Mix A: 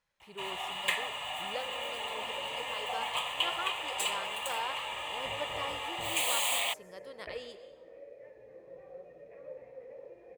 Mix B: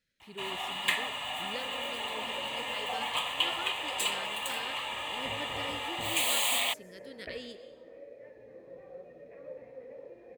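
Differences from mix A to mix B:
speech: add Butterworth band-reject 900 Hz, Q 0.82
master: add graphic EQ with 15 bands 100 Hz +4 dB, 250 Hz +10 dB, 1,600 Hz +3 dB, 4,000 Hz +4 dB, 16,000 Hz +4 dB

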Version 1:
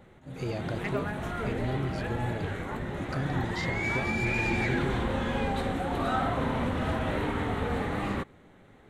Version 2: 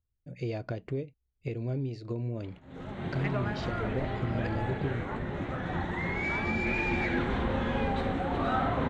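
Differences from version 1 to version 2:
background: entry +2.40 s
master: add high-frequency loss of the air 120 metres

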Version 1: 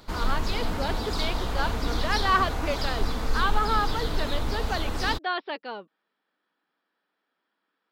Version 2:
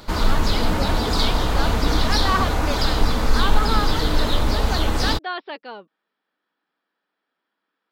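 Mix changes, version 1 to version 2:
background +6.5 dB
reverb: on, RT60 1.0 s

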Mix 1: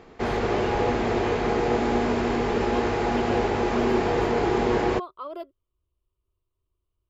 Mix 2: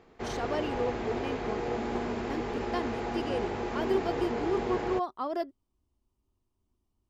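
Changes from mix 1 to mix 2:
speech: remove phaser with its sweep stopped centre 1,200 Hz, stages 8
background −9.5 dB

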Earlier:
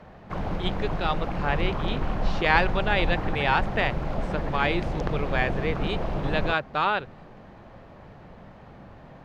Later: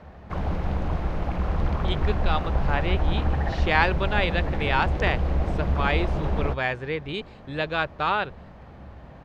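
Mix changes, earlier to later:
speech: entry +1.25 s
master: add parametric band 69 Hz +14.5 dB 0.43 octaves

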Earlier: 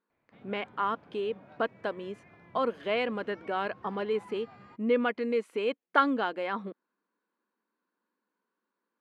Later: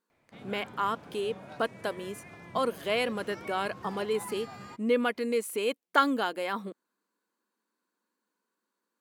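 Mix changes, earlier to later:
background +7.5 dB
master: remove low-pass filter 2,800 Hz 12 dB per octave

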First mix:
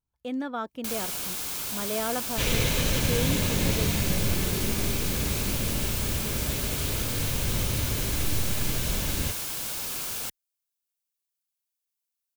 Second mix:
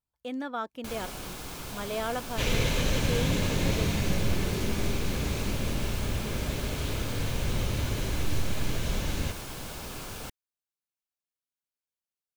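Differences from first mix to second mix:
first sound: add spectral tilt −3.5 dB per octave
second sound: add spectral tilt −1.5 dB per octave
master: add low-shelf EQ 300 Hz −7 dB

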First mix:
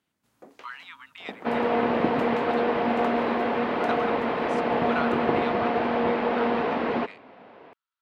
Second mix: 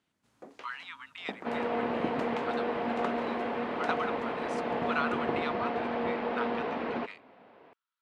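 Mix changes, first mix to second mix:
first sound: add low-pass filter 9,100 Hz 12 dB per octave
second sound −7.5 dB

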